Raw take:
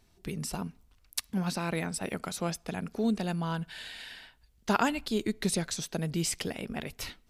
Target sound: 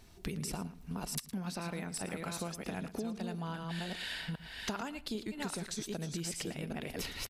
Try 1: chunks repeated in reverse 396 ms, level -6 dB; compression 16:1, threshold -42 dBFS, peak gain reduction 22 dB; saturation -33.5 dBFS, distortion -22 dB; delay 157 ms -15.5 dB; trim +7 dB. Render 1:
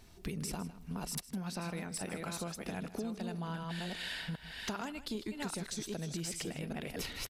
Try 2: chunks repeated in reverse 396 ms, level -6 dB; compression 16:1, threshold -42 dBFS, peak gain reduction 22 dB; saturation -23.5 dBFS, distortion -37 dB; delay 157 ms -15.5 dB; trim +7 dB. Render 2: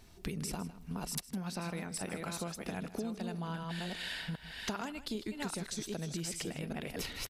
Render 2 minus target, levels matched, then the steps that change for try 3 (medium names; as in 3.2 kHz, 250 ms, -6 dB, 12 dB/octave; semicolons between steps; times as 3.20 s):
echo 44 ms late
change: delay 113 ms -15.5 dB